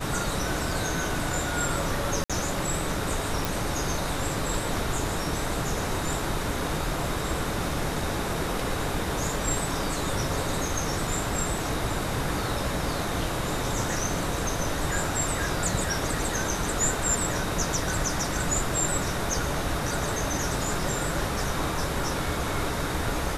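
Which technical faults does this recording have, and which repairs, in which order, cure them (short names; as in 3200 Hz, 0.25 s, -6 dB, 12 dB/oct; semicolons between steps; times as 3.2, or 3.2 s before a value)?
2.24–2.3 gap 56 ms
3.45 pop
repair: de-click; interpolate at 2.24, 56 ms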